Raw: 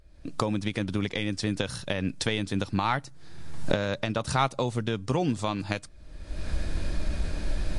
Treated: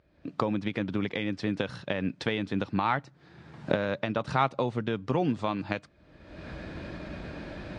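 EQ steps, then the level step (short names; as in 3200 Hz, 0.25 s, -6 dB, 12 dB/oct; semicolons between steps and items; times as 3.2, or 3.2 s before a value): BPF 130–2800 Hz; 0.0 dB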